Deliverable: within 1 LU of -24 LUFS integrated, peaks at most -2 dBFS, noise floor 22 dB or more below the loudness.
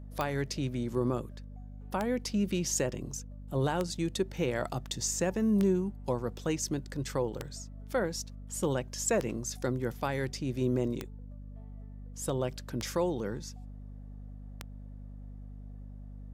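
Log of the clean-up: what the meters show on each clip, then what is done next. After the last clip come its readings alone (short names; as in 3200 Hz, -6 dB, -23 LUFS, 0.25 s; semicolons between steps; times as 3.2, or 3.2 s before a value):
clicks 9; hum 50 Hz; harmonics up to 250 Hz; hum level -42 dBFS; loudness -32.5 LUFS; peak -14.0 dBFS; loudness target -24.0 LUFS
-> de-click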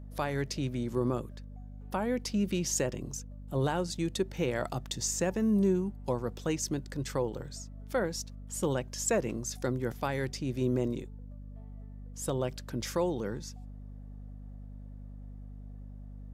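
clicks 0; hum 50 Hz; harmonics up to 250 Hz; hum level -42 dBFS
-> de-hum 50 Hz, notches 5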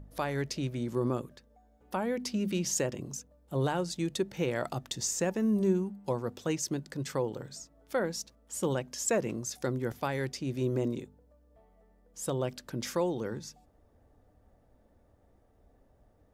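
hum none; loudness -33.0 LUFS; peak -16.5 dBFS; loudness target -24.0 LUFS
-> gain +9 dB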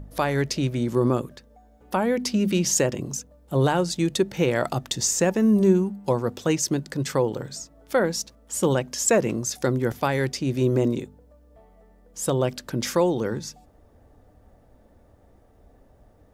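loudness -24.0 LUFS; peak -7.5 dBFS; noise floor -56 dBFS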